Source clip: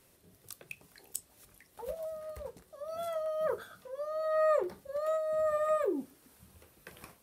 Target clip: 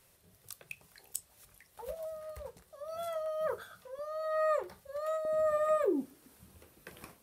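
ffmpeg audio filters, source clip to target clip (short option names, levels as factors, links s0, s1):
-af "asetnsamples=n=441:p=0,asendcmd='3.99 equalizer g -15;5.25 equalizer g 3',equalizer=f=290:t=o:w=1.1:g=-9"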